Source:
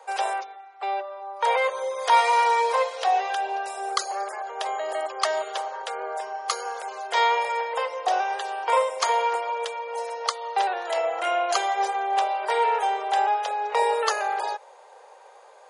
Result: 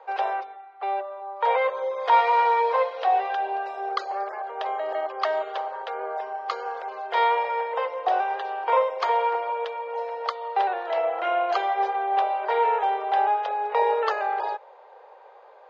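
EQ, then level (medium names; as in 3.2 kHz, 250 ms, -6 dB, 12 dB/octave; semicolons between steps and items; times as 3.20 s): low-pass 4.4 kHz 24 dB/octave; treble shelf 2.7 kHz -12 dB; +1.5 dB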